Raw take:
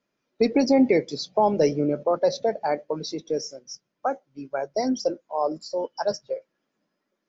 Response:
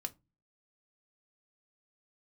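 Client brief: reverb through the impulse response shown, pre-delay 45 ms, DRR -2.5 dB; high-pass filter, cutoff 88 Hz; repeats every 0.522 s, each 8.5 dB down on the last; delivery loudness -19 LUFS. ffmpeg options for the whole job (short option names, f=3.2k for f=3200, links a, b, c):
-filter_complex "[0:a]highpass=88,aecho=1:1:522|1044|1566|2088:0.376|0.143|0.0543|0.0206,asplit=2[a][b];[1:a]atrim=start_sample=2205,adelay=45[c];[b][c]afir=irnorm=-1:irlink=0,volume=4dB[d];[a][d]amix=inputs=2:normalize=0,volume=0.5dB"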